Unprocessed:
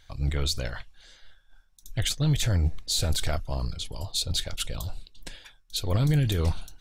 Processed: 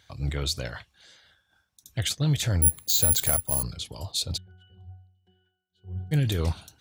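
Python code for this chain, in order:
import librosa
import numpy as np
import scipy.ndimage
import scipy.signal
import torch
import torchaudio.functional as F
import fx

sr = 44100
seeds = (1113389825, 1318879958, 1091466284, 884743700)

y = scipy.signal.sosfilt(scipy.signal.butter(4, 72.0, 'highpass', fs=sr, output='sos'), x)
y = fx.resample_bad(y, sr, factor=4, down='filtered', up='zero_stuff', at=(2.62, 3.63))
y = fx.octave_resonator(y, sr, note='F#', decay_s=0.59, at=(4.36, 6.11), fade=0.02)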